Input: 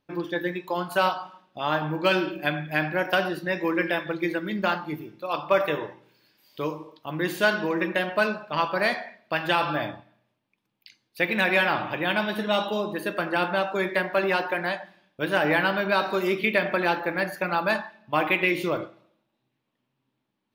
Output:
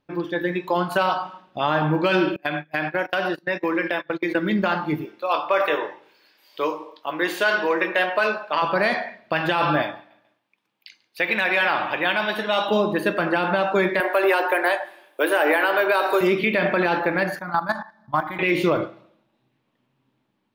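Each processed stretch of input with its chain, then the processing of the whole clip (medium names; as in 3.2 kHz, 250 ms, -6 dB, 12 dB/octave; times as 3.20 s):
2.36–4.35 s: gate -31 dBFS, range -25 dB + high-pass 340 Hz 6 dB/octave + compression 3:1, threshold -27 dBFS
5.05–8.62 s: high-pass 470 Hz + doubling 23 ms -11.5 dB
9.82–12.69 s: high-pass 700 Hz 6 dB/octave + feedback delay 142 ms, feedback 43%, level -23 dB
14.00–16.21 s: steep high-pass 330 Hz + resonant high shelf 7.5 kHz +12.5 dB, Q 1.5 + three bands compressed up and down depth 40%
17.39–18.39 s: static phaser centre 1.1 kHz, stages 4 + level held to a coarse grid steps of 13 dB
whole clip: treble shelf 5.5 kHz -9 dB; peak limiter -18 dBFS; level rider gain up to 5 dB; trim +3 dB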